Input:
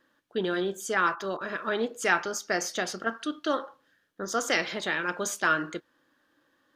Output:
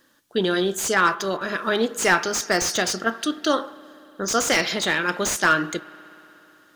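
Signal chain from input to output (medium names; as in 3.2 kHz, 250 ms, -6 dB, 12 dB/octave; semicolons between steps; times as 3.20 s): tone controls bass +3 dB, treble +12 dB; spring tank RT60 3.5 s, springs 59 ms, chirp 20 ms, DRR 19.5 dB; slew-rate limiter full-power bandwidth 220 Hz; trim +6 dB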